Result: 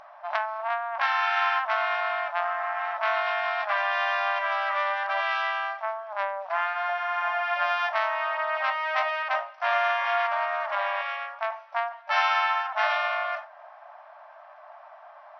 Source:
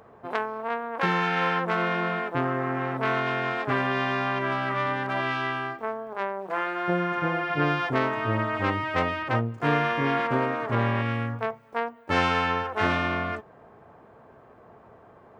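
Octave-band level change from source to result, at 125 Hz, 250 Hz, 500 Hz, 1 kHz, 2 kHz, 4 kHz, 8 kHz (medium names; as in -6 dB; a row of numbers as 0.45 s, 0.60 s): under -40 dB, under -40 dB, -2.5 dB, +2.0 dB, +1.5 dB, +1.0 dB, no reading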